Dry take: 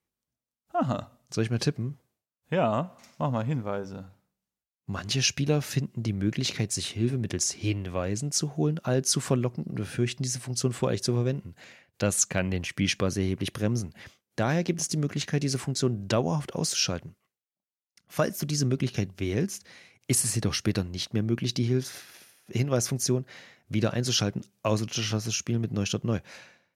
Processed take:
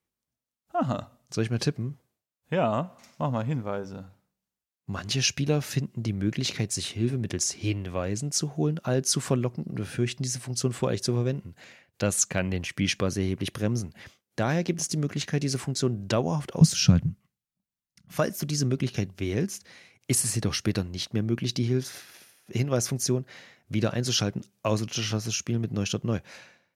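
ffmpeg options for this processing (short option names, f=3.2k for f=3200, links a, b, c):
-filter_complex "[0:a]asettb=1/sr,asplit=3[a][b][c];[a]atrim=end=16.614[d];[b]atrim=start=16.61:end=18.17,asetpts=PTS-STARTPTS,afade=t=in:d=0.004:c=qsin,afade=t=out:st=1.556:d=0.004:c=qsin,lowshelf=f=270:t=q:w=1.5:g=13.5[e];[c]atrim=start=18.166[f];[d][e]acrossfade=d=0.004:c1=hsin:c2=qsin[g];[g][f]acrossfade=d=0.004:c1=qsin:c2=hsin"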